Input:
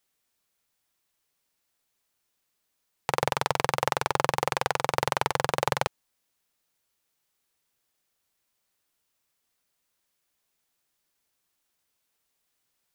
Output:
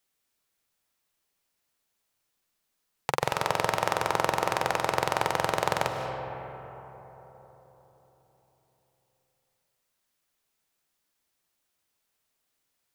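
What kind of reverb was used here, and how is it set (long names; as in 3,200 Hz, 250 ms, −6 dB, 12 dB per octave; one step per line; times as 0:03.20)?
comb and all-pass reverb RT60 4.2 s, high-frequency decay 0.35×, pre-delay 110 ms, DRR 4.5 dB
level −1.5 dB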